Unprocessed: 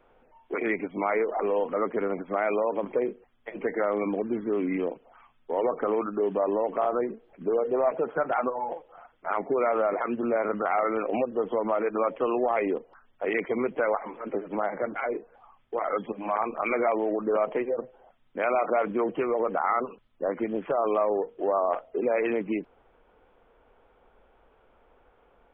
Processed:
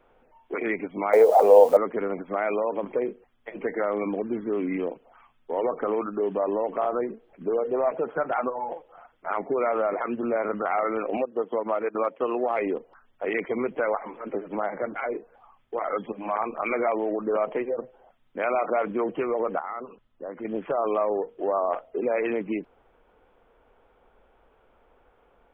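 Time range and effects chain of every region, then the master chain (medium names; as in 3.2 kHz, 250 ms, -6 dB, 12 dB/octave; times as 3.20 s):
1.13–1.77 s: zero-crossing glitches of -32.5 dBFS + high-order bell 630 Hz +13.5 dB 1.2 oct
11.17–12.59 s: peaking EQ 96 Hz -6 dB 1.7 oct + transient shaper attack +1 dB, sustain -9 dB + high-pass 67 Hz
19.59–20.45 s: distance through air 160 m + band-stop 2.3 kHz, Q 16 + compression 1.5:1, threshold -44 dBFS
whole clip: none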